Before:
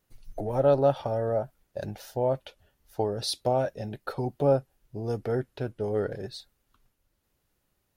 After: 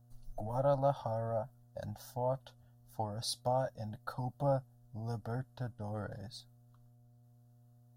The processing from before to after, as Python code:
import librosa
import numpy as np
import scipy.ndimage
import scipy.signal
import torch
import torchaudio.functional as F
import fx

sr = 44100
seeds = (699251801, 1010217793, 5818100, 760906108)

y = fx.dmg_buzz(x, sr, base_hz=120.0, harmonics=6, level_db=-57.0, tilt_db=-8, odd_only=False)
y = fx.fixed_phaser(y, sr, hz=960.0, stages=4)
y = y * librosa.db_to_amplitude(-4.0)